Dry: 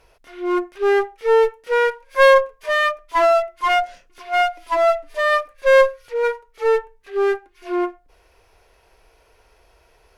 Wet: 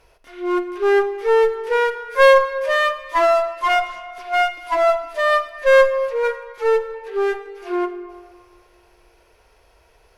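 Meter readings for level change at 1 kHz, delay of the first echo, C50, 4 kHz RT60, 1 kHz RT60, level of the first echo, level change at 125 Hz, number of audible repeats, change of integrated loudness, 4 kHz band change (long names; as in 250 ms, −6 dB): 0.0 dB, no echo audible, 11.5 dB, 1.3 s, 2.1 s, no echo audible, can't be measured, no echo audible, +0.5 dB, 0.0 dB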